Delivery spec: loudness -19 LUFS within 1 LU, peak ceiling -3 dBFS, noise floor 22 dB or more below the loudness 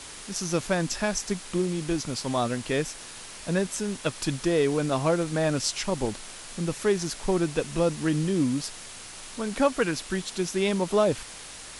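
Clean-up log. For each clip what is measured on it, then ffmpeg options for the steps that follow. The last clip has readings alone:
noise floor -43 dBFS; noise floor target -50 dBFS; loudness -27.5 LUFS; peak level -10.0 dBFS; loudness target -19.0 LUFS
-> -af "afftdn=nr=7:nf=-43"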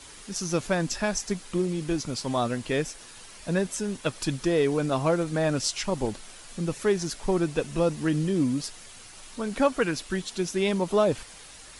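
noise floor -47 dBFS; noise floor target -50 dBFS
-> -af "afftdn=nr=6:nf=-47"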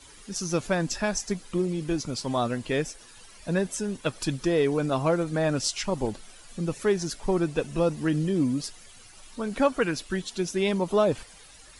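noise floor -50 dBFS; loudness -27.5 LUFS; peak level -10.0 dBFS; loudness target -19.0 LUFS
-> -af "volume=2.66,alimiter=limit=0.708:level=0:latency=1"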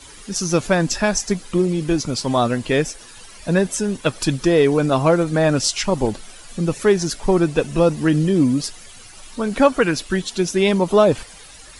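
loudness -19.0 LUFS; peak level -3.0 dBFS; noise floor -42 dBFS

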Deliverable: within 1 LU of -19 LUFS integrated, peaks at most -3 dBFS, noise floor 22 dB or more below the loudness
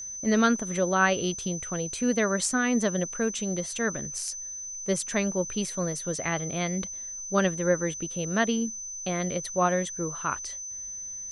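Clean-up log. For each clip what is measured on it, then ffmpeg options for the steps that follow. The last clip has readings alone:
steady tone 6.1 kHz; tone level -35 dBFS; loudness -28.0 LUFS; peak level -9.0 dBFS; loudness target -19.0 LUFS
-> -af "bandreject=f=6100:w=30"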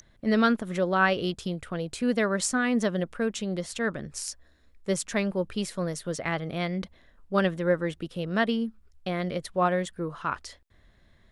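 steady tone not found; loudness -28.5 LUFS; peak level -9.5 dBFS; loudness target -19.0 LUFS
-> -af "volume=2.99,alimiter=limit=0.708:level=0:latency=1"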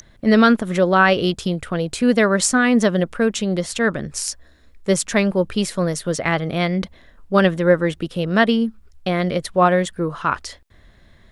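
loudness -19.0 LUFS; peak level -3.0 dBFS; noise floor -51 dBFS

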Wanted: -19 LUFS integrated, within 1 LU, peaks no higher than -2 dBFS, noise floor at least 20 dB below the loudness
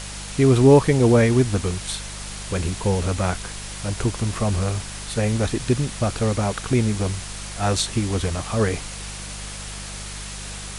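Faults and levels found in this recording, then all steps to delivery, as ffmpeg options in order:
hum 50 Hz; highest harmonic 200 Hz; hum level -35 dBFS; noise floor -34 dBFS; noise floor target -42 dBFS; loudness -21.5 LUFS; peak level -3.5 dBFS; loudness target -19.0 LUFS
-> -af "bandreject=f=50:t=h:w=4,bandreject=f=100:t=h:w=4,bandreject=f=150:t=h:w=4,bandreject=f=200:t=h:w=4"
-af "afftdn=nr=8:nf=-34"
-af "volume=1.33,alimiter=limit=0.794:level=0:latency=1"

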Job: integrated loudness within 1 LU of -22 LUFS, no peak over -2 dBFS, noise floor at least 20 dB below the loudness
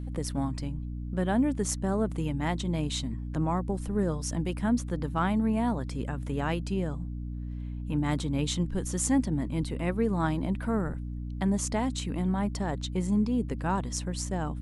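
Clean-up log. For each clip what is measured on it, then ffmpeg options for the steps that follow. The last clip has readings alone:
hum 60 Hz; highest harmonic 300 Hz; hum level -33 dBFS; loudness -30.0 LUFS; peak level -12.5 dBFS; loudness target -22.0 LUFS
-> -af "bandreject=f=60:t=h:w=6,bandreject=f=120:t=h:w=6,bandreject=f=180:t=h:w=6,bandreject=f=240:t=h:w=6,bandreject=f=300:t=h:w=6"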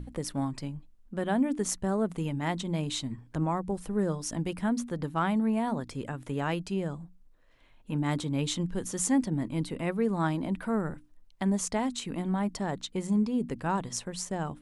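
hum not found; loudness -31.0 LUFS; peak level -13.0 dBFS; loudness target -22.0 LUFS
-> -af "volume=2.82"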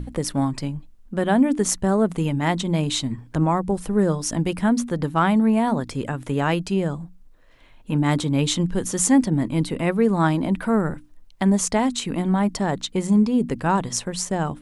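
loudness -22.0 LUFS; peak level -4.0 dBFS; noise floor -49 dBFS

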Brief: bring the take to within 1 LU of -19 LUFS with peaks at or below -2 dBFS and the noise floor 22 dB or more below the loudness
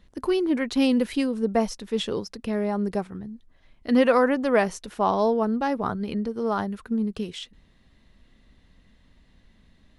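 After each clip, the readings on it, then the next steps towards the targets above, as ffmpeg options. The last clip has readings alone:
loudness -25.0 LUFS; peak level -7.0 dBFS; loudness target -19.0 LUFS
-> -af "volume=2,alimiter=limit=0.794:level=0:latency=1"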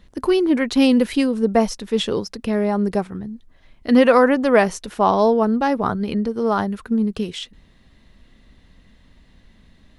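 loudness -19.0 LUFS; peak level -2.0 dBFS; noise floor -54 dBFS

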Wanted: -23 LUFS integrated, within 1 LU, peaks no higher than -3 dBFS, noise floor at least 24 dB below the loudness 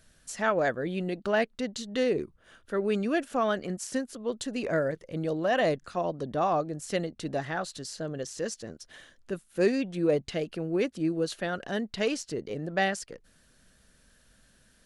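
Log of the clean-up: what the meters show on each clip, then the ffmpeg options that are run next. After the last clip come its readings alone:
loudness -30.0 LUFS; peak level -12.5 dBFS; loudness target -23.0 LUFS
-> -af "volume=2.24"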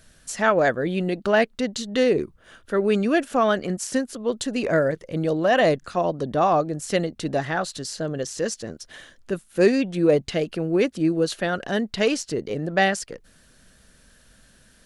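loudness -23.0 LUFS; peak level -5.5 dBFS; noise floor -56 dBFS

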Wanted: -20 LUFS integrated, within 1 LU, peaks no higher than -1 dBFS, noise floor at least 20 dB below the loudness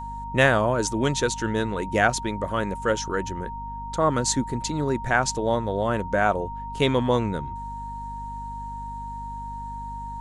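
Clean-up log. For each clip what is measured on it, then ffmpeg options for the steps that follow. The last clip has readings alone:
hum 50 Hz; highest harmonic 250 Hz; hum level -35 dBFS; steady tone 930 Hz; tone level -33 dBFS; loudness -25.5 LUFS; peak level -5.0 dBFS; loudness target -20.0 LUFS
-> -af "bandreject=f=50:t=h:w=6,bandreject=f=100:t=h:w=6,bandreject=f=150:t=h:w=6,bandreject=f=200:t=h:w=6,bandreject=f=250:t=h:w=6"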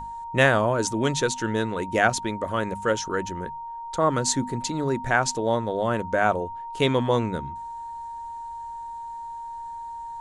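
hum not found; steady tone 930 Hz; tone level -33 dBFS
-> -af "bandreject=f=930:w=30"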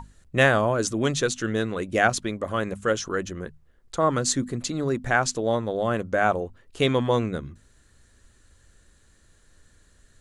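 steady tone not found; loudness -25.0 LUFS; peak level -4.5 dBFS; loudness target -20.0 LUFS
-> -af "volume=1.78,alimiter=limit=0.891:level=0:latency=1"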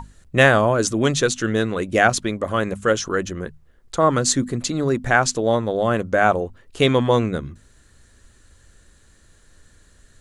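loudness -20.0 LUFS; peak level -1.0 dBFS; noise floor -54 dBFS

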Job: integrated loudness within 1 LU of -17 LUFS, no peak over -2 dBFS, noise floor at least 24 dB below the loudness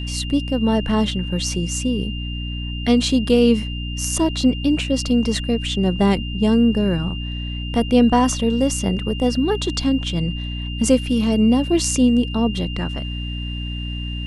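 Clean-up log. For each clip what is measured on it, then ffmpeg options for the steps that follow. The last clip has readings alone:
hum 60 Hz; highest harmonic 300 Hz; hum level -25 dBFS; steady tone 2.8 kHz; tone level -32 dBFS; loudness -20.0 LUFS; peak level -3.5 dBFS; loudness target -17.0 LUFS
-> -af "bandreject=f=60:t=h:w=4,bandreject=f=120:t=h:w=4,bandreject=f=180:t=h:w=4,bandreject=f=240:t=h:w=4,bandreject=f=300:t=h:w=4"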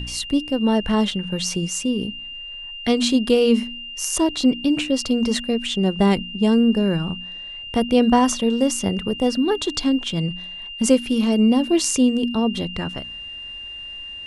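hum not found; steady tone 2.8 kHz; tone level -32 dBFS
-> -af "bandreject=f=2800:w=30"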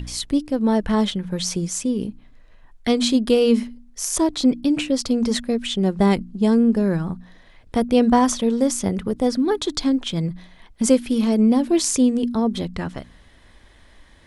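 steady tone not found; loudness -20.5 LUFS; peak level -3.5 dBFS; loudness target -17.0 LUFS
-> -af "volume=1.5,alimiter=limit=0.794:level=0:latency=1"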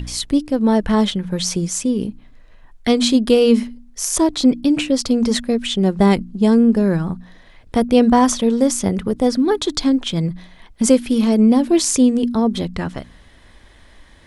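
loudness -17.0 LUFS; peak level -2.0 dBFS; noise floor -47 dBFS

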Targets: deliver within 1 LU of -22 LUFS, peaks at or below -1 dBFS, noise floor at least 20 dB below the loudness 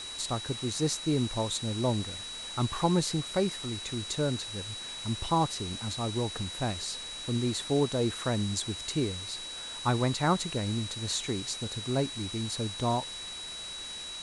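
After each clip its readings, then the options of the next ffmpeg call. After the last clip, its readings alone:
steady tone 3.9 kHz; tone level -39 dBFS; noise floor -41 dBFS; noise floor target -51 dBFS; loudness -31.0 LUFS; peak level -14.0 dBFS; loudness target -22.0 LUFS
-> -af "bandreject=f=3900:w=30"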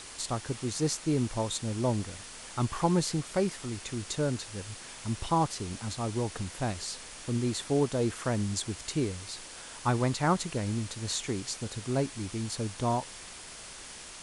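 steady tone not found; noise floor -46 dBFS; noise floor target -52 dBFS
-> -af "afftdn=nr=6:nf=-46"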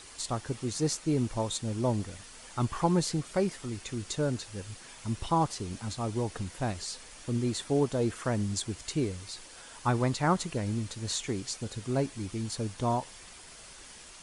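noise floor -50 dBFS; noise floor target -52 dBFS
-> -af "afftdn=nr=6:nf=-50"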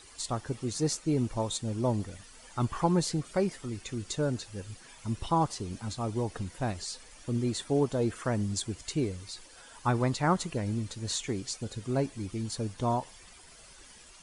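noise floor -53 dBFS; loudness -32.0 LUFS; peak level -14.0 dBFS; loudness target -22.0 LUFS
-> -af "volume=3.16"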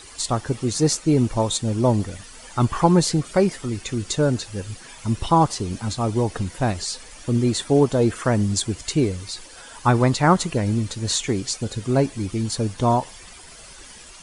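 loudness -22.0 LUFS; peak level -4.0 dBFS; noise floor -43 dBFS

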